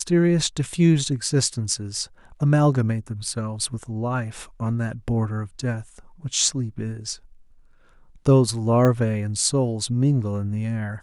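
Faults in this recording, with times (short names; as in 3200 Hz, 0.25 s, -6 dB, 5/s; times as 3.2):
8.85 pop -10 dBFS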